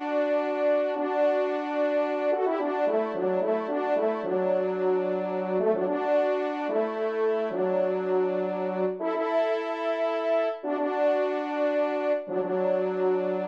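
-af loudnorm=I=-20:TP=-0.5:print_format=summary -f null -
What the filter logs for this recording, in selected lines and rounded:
Input Integrated:    -26.6 LUFS
Input True Peak:     -13.4 dBTP
Input LRA:             0.8 LU
Input Threshold:     -36.6 LUFS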